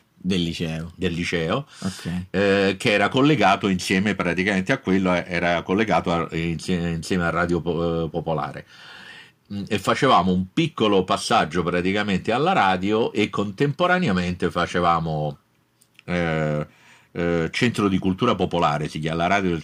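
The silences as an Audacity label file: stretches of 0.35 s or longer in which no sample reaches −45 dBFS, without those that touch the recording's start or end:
15.360000	15.820000	silence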